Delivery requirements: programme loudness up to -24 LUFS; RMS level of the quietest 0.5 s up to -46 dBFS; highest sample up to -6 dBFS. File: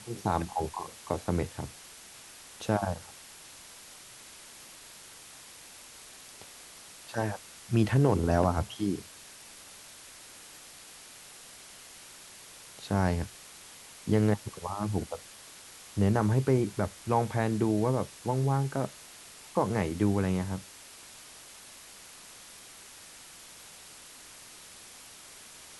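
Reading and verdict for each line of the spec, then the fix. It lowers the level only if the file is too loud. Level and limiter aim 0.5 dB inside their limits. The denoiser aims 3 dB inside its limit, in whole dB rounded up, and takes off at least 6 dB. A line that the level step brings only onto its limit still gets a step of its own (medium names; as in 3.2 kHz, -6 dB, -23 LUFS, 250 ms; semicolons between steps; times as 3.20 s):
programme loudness -30.0 LUFS: pass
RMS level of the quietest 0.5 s -50 dBFS: pass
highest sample -11.5 dBFS: pass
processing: none needed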